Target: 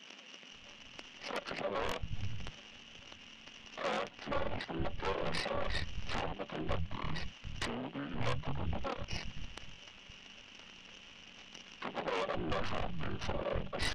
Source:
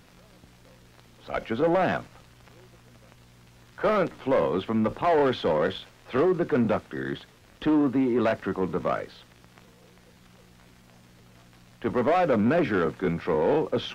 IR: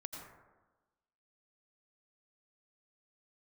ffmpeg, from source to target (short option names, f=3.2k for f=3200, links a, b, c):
-filter_complex "[0:a]afftfilt=real='real(if(between(b,1,1008),(2*floor((b-1)/24)+1)*24-b,b),0)':imag='imag(if(between(b,1,1008),(2*floor((b-1)/24)+1)*24-b,b),0)*if(between(b,1,1008),-1,1)':win_size=2048:overlap=0.75,asetrate=24750,aresample=44100,atempo=1.7818,tiltshelf=f=860:g=-4.5,acompressor=threshold=-40dB:ratio=2,adynamicequalizer=threshold=0.00316:dfrequency=1100:dqfactor=0.74:tfrequency=1100:tqfactor=0.74:attack=5:release=100:ratio=0.375:range=1.5:mode=cutabove:tftype=bell,lowpass=f=2.9k:t=q:w=9.5,aeval=exprs='0.0794*(cos(1*acos(clip(val(0)/0.0794,-1,1)))-cos(1*PI/2))+0.0355*(cos(6*acos(clip(val(0)/0.0794,-1,1)))-cos(6*PI/2))':c=same,acrossover=split=180[a][b];[a]adelay=520[c];[c][b]amix=inputs=2:normalize=0,volume=-4dB"